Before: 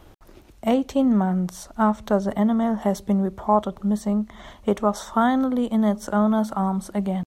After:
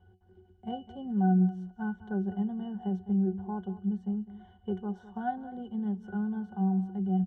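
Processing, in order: pitch-class resonator F#, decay 0.18 s; on a send: delay 205 ms -15.5 dB

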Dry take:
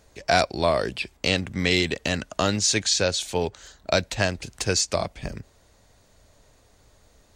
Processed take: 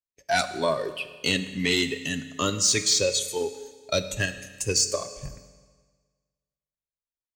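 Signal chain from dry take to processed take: spectral noise reduction 14 dB; gate -53 dBFS, range -35 dB; treble shelf 6.6 kHz +8.5 dB; comb 7.4 ms, depth 35%; in parallel at +1 dB: level held to a coarse grid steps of 12 dB; on the sum: saturation -5.5 dBFS, distortion -21 dB; on a send at -10 dB: reverberation RT60 1.5 s, pre-delay 7 ms; on the sum: trim -6 dB

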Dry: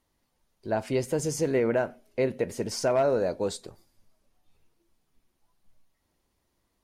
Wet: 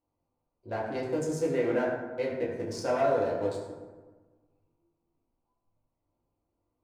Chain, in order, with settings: local Wiener filter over 25 samples; bass shelf 250 Hz -9 dB; reverberation RT60 1.4 s, pre-delay 5 ms, DRR -5.5 dB; trim -6.5 dB

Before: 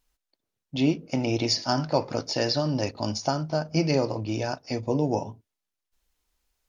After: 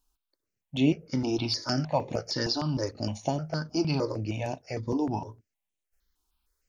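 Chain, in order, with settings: stepped phaser 6.5 Hz 540–4900 Hz

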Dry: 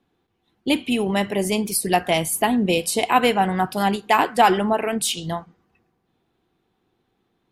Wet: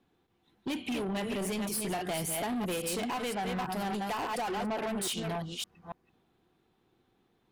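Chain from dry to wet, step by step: chunks repeated in reverse 282 ms, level -7 dB; in parallel at -5 dB: wavefolder -21 dBFS; on the sum: compression 4:1, threshold -22 dBFS, peak gain reduction 10.5 dB; saturation -23.5 dBFS, distortion -14 dB; trim -6 dB

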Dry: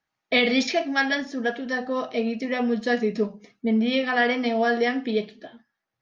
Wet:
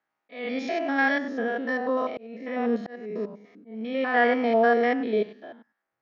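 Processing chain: spectrogram pixelated in time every 100 ms; three-band isolator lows -15 dB, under 230 Hz, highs -13 dB, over 2.3 kHz; slow attack 596 ms; trim +4 dB

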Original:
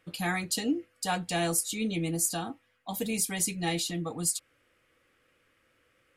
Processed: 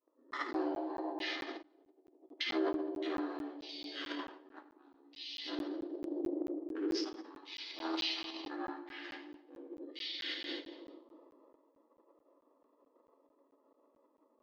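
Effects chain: local Wiener filter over 25 samples; FDN reverb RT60 0.98 s, low-frequency decay 0.85×, high-frequency decay 0.35×, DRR -10 dB; compressor with a negative ratio -31 dBFS, ratio -1; gate with hold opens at -50 dBFS; transient shaper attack -10 dB, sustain +10 dB; speed mistake 78 rpm record played at 33 rpm; brick-wall FIR band-pass 260–9400 Hz; treble shelf 4.2 kHz -10.5 dB; crackling interface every 0.22 s, samples 512, zero, from 0.31 s; trim -5 dB

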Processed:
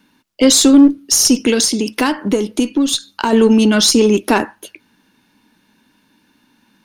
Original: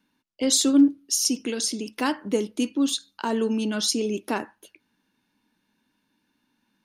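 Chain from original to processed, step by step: in parallel at -4.5 dB: one-sided clip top -27.5 dBFS, bottom -13 dBFS; 1.59–3.33 s: on the sum: compression 6:1, threshold -23 dBFS, peak gain reduction 8.5 dB; loudness maximiser +12 dB; trim -1 dB

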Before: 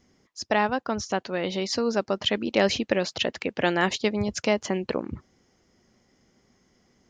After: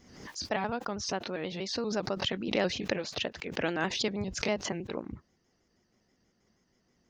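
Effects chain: pitch shift switched off and on -1.5 st, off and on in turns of 80 ms; swell ahead of each attack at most 63 dB/s; trim -7.5 dB

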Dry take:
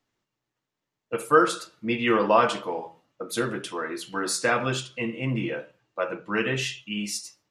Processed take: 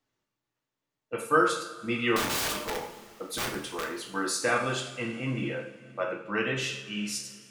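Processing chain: 2.16–3.84 s: integer overflow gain 22 dB; two-slope reverb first 0.53 s, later 3.1 s, from -18 dB, DRR 2 dB; trim -4.5 dB

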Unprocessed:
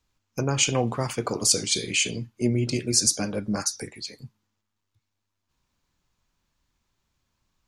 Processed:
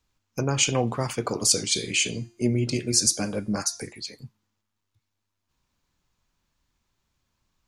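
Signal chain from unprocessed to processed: 1.70–3.93 s: de-hum 348.1 Hz, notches 34

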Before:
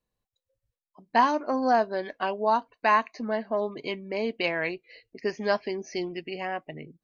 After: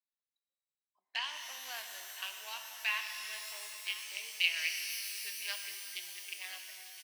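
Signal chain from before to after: local Wiener filter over 15 samples; in parallel at -2 dB: compression, threshold -30 dBFS, peak gain reduction 13.5 dB; on the sum: resonant high-pass 2.8 kHz, resonance Q 3.6; on a send: delay 1012 ms -16 dB; on the sum: pitch-shifted reverb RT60 3.5 s, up +12 st, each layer -2 dB, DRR 4.5 dB; trim -8.5 dB

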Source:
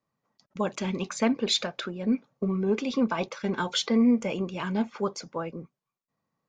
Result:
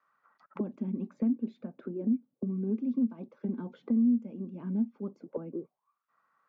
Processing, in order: auto-wah 240–1400 Hz, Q 6.2, down, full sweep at -29.5 dBFS; three bands compressed up and down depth 70%; trim +1.5 dB

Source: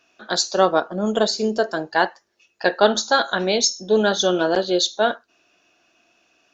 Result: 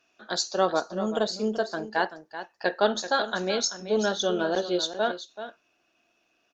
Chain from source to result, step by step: delay 383 ms -11.5 dB; trim -7 dB; Opus 48 kbps 48 kHz

